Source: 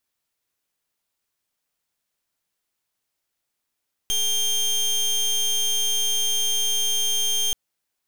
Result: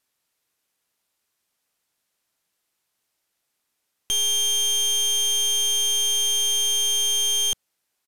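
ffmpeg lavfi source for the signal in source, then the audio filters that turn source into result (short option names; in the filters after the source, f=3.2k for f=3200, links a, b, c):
-f lavfi -i "aevalsrc='0.0794*(2*lt(mod(3180*t,1),0.24)-1)':d=3.43:s=44100"
-filter_complex "[0:a]lowshelf=f=82:g=-7.5,asplit=2[a][b];[b]asoftclip=type=hard:threshold=-32.5dB,volume=-3.5dB[c];[a][c]amix=inputs=2:normalize=0,aresample=32000,aresample=44100"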